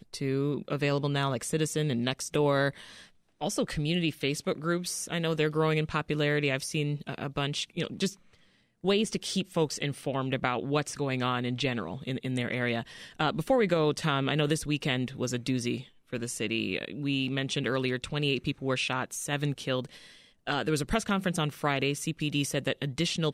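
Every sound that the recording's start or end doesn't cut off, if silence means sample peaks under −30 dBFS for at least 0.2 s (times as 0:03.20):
0:03.42–0:08.08
0:08.84–0:12.81
0:13.20–0:15.78
0:16.13–0:19.85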